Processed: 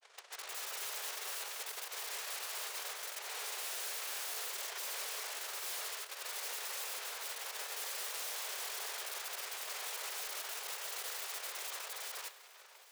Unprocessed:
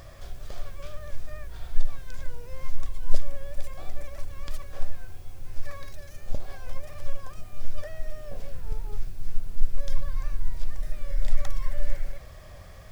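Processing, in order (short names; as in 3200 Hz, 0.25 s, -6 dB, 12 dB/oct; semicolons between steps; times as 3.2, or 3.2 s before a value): sample sorter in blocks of 128 samples; gate -31 dBFS, range -24 dB; reverse; compressor, threshold -25 dBFS, peak gain reduction 17.5 dB; reverse; limiter -29 dBFS, peak gain reduction 10.5 dB; grains 0.1 s, grains 20/s; noise vocoder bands 1; overdrive pedal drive 16 dB, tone 1600 Hz, clips at -29.5 dBFS; wrapped overs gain 47.5 dB; on a send: swung echo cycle 1.141 s, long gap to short 3:1, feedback 53%, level -19.5 dB; on the sum: echoes that change speed 0.261 s, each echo +1 st, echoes 2; brick-wall FIR high-pass 370 Hz; gain +9.5 dB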